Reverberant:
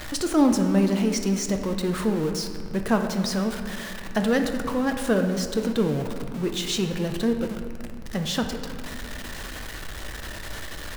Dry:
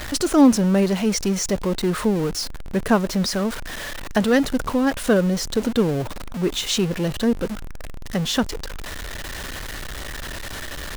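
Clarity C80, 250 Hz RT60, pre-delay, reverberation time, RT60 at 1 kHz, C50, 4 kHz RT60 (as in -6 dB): 8.5 dB, 3.1 s, 6 ms, 2.1 s, 2.0 s, 7.0 dB, 1.3 s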